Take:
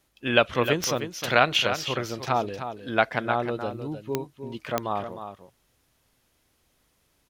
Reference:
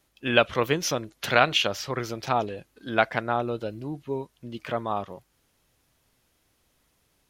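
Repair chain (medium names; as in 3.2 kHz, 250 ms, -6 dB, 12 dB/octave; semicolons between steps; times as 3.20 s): de-click; inverse comb 308 ms -9.5 dB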